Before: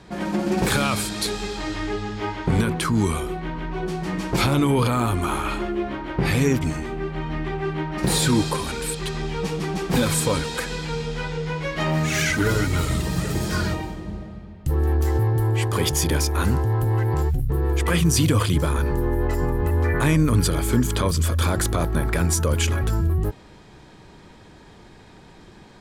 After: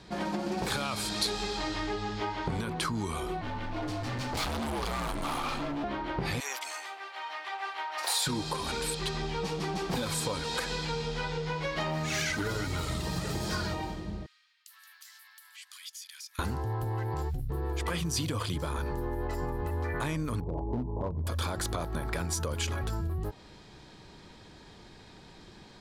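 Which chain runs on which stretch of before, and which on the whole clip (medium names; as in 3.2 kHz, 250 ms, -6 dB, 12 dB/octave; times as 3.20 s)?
3.41–5.84 s: frequency shift -62 Hz + overload inside the chain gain 26.5 dB
6.40–8.27 s: high-pass 710 Hz 24 dB/octave + treble shelf 9.9 kHz +8 dB
14.26–16.39 s: Bessel high-pass 2.4 kHz, order 8 + compression 2.5:1, threshold -48 dBFS
20.40–21.27 s: steep low-pass 1 kHz 96 dB/octave + hard clipper -14 dBFS
whole clip: dynamic bell 840 Hz, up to +6 dB, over -39 dBFS, Q 0.97; compression, threshold -24 dBFS; peaking EQ 4.4 kHz +7 dB 1.1 oct; trim -5.5 dB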